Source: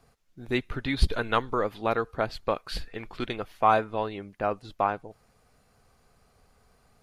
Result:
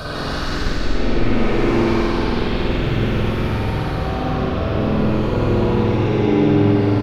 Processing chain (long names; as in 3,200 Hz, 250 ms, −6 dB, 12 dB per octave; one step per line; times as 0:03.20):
low-shelf EQ 390 Hz +12 dB
compressor whose output falls as the input rises −32 dBFS, ratio −1
echo with shifted repeats 433 ms, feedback 48%, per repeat +39 Hz, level −7 dB
extreme stretch with random phases 4.1×, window 0.50 s, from 0:02.65
spring reverb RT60 3.3 s, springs 47 ms, chirp 20 ms, DRR −9 dB
delay with pitch and tempo change per echo 148 ms, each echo +3 semitones, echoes 3, each echo −6 dB